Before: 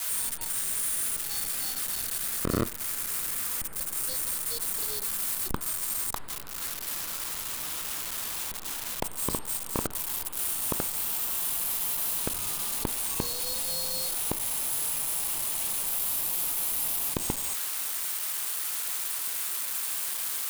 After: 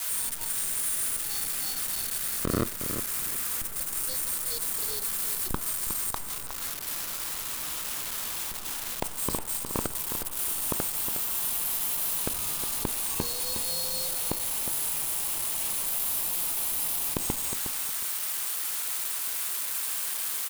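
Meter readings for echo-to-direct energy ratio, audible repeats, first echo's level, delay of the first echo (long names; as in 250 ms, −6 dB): −9.0 dB, 2, −9.0 dB, 362 ms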